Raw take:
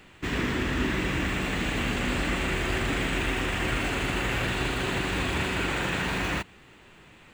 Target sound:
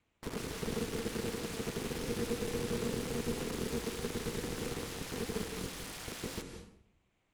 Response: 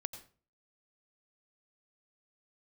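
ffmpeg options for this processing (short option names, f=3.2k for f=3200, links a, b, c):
-filter_complex "[0:a]afwtdn=0.0316,equalizer=f=2k:w=2.1:g=-8.5,acrossover=split=150[a][b];[a]acrusher=bits=4:mix=0:aa=0.000001[c];[b]aeval=exprs='(mod(53.1*val(0)+1,2)-1)/53.1':c=same[d];[c][d]amix=inputs=2:normalize=0,afreqshift=-400,aeval=exprs='val(0)*sin(2*PI*120*n/s)':c=same[e];[1:a]atrim=start_sample=2205,asetrate=23814,aresample=44100[f];[e][f]afir=irnorm=-1:irlink=0,volume=-4.5dB"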